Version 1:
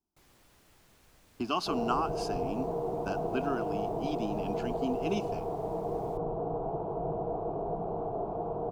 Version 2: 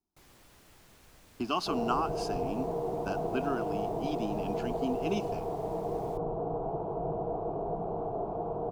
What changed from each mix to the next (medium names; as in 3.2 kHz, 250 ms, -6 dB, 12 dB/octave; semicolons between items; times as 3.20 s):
first sound +4.0 dB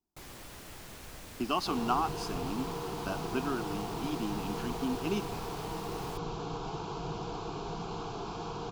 first sound +11.0 dB; second sound: remove resonant low-pass 620 Hz, resonance Q 6.9